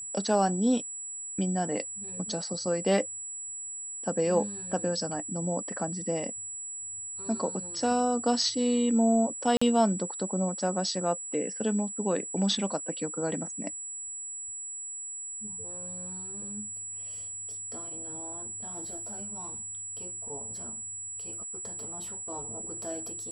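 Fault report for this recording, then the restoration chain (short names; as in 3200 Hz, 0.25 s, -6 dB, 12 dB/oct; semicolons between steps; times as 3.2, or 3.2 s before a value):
tone 7800 Hz -36 dBFS
9.57–9.62 gap 45 ms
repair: notch 7800 Hz, Q 30; interpolate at 9.57, 45 ms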